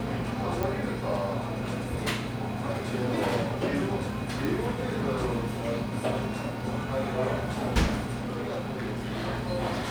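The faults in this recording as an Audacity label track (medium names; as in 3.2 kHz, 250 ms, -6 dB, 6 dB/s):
0.630000	0.630000	pop
4.450000	4.450000	pop
8.190000	9.290000	clipped -28.5 dBFS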